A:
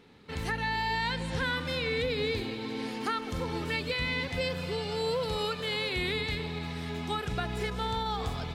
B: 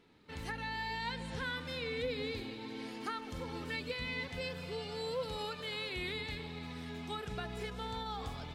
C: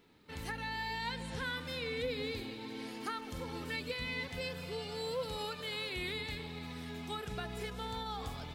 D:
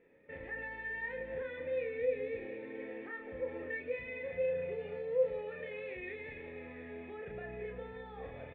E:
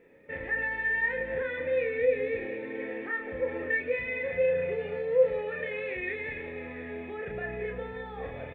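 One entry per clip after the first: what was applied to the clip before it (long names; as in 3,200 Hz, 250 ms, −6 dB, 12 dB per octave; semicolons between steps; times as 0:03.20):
flanger 0.34 Hz, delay 3 ms, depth 1.7 ms, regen +66%; level −3.5 dB
high-shelf EQ 11,000 Hz +12 dB
brickwall limiter −33.5 dBFS, peak gain reduction 7 dB; formant resonators in series e; double-tracking delay 33 ms −4 dB; level +12 dB
dynamic equaliser 1,700 Hz, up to +5 dB, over −54 dBFS, Q 1.4; level +7.5 dB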